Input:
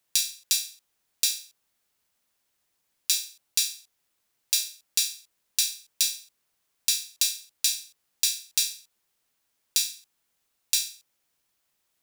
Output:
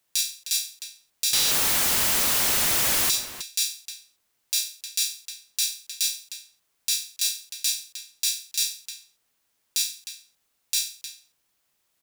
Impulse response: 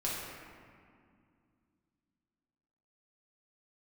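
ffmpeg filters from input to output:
-filter_complex "[0:a]asettb=1/sr,asplit=3[link_01][link_02][link_03];[link_01]atrim=end=1.334[link_04];[link_02]atrim=start=1.33:end=3.11,asetpts=PTS-STARTPTS,afade=type=in:duration=0.004:curve=qsin,afade=type=out:start_time=1.776:duration=0.004:curve=qsin,aeval=exprs='val(0)+0.5*0.119*sgn(val(0))':channel_layout=same[link_05];[link_03]atrim=start=3.106[link_06];[link_04][link_05]acrossfade=duration=0.004:curve1=hsin:curve2=qsin[link_07];[link_07][link_06]acrossfade=duration=0.004:curve1=qsin:curve2=hsin,asplit=2[link_08][link_09];[link_09]adelay=309,volume=-12dB,highshelf=frequency=4000:gain=-6.95[link_10];[link_08][link_10]amix=inputs=2:normalize=0,alimiter=level_in=8dB:limit=-1dB:release=50:level=0:latency=1,volume=-5.5dB"

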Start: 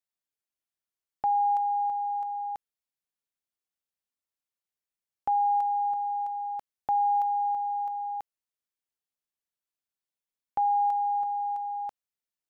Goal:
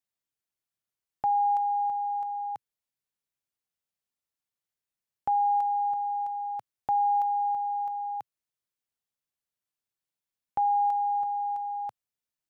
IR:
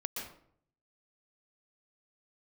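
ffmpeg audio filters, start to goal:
-af "equalizer=frequency=120:width=1.5:gain=6.5"

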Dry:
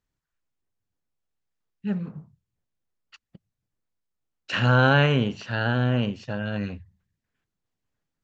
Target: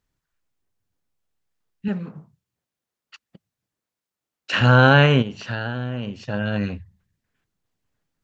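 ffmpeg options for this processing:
ffmpeg -i in.wav -filter_complex "[0:a]asettb=1/sr,asplit=3[link_01][link_02][link_03];[link_01]atrim=end=1.884[link_04];[link_02]atrim=start=1.88:end=4.61,asetpts=PTS-STARTPTS,afade=type=in:duration=0.004:curve=qsin,afade=type=out:start_time=2.726:duration=0.004:curve=qsin,highpass=frequency=260:poles=1[link_05];[link_03]atrim=start=4.606[link_06];[link_04][link_05]acrossfade=duration=0.004:curve1=hsin:curve2=qsin[link_07];[link_07][link_06]acrossfade=duration=0.004:curve1=qsin:curve2=hsin,asplit=3[link_08][link_09][link_10];[link_08]afade=type=out:start_time=5.21:duration=0.02[link_11];[link_09]acompressor=threshold=-29dB:ratio=6,afade=type=in:start_time=5.21:duration=0.02,afade=type=out:start_time=6.32:duration=0.02[link_12];[link_10]afade=type=in:start_time=6.32:duration=0.02[link_13];[link_11][link_12][link_13]amix=inputs=3:normalize=0,volume=5dB" out.wav

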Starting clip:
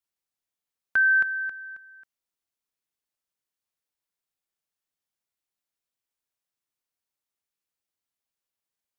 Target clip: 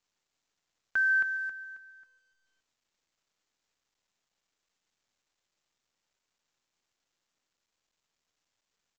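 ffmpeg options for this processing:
ffmpeg -i in.wav -filter_complex "[0:a]bandreject=frequency=70.09:width_type=h:width=4,bandreject=frequency=140.18:width_type=h:width=4,bandreject=frequency=210.27:width_type=h:width=4,asplit=2[link_01][link_02];[link_02]aecho=0:1:142|284|426|568:0.112|0.0539|0.0259|0.0124[link_03];[link_01][link_03]amix=inputs=2:normalize=0,volume=-6dB" -ar 16000 -c:a pcm_mulaw out.wav

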